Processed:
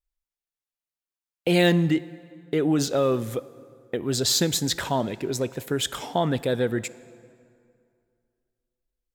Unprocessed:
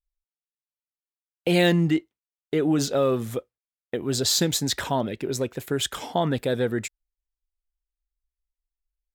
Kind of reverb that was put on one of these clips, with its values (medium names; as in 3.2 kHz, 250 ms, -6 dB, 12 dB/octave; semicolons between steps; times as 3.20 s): plate-style reverb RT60 2.4 s, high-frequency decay 0.65×, DRR 17 dB